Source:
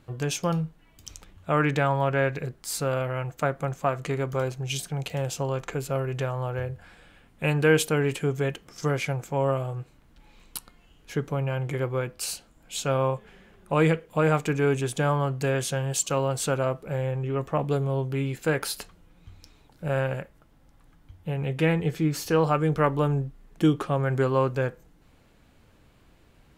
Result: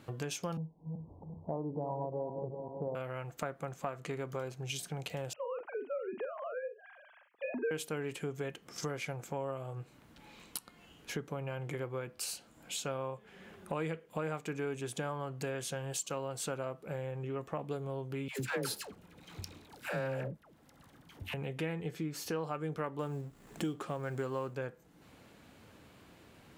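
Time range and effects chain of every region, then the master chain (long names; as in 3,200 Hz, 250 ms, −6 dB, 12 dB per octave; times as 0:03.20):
0:00.57–0:02.95: feedback delay that plays each chunk backwards 192 ms, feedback 52%, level −8 dB + Butterworth low-pass 1,000 Hz 96 dB per octave
0:05.33–0:07.71: three sine waves on the formant tracks + low-pass filter 1,300 Hz 6 dB per octave + double-tracking delay 44 ms −8 dB
0:18.28–0:21.34: leveller curve on the samples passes 2 + all-pass dispersion lows, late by 119 ms, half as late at 630 Hz
0:22.99–0:24.54: mu-law and A-law mismatch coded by mu + parametric band 7,500 Hz +7 dB 0.28 octaves
whole clip: high-pass filter 110 Hz; parametric band 140 Hz −4 dB 0.21 octaves; downward compressor 3 to 1, threshold −43 dBFS; level +3 dB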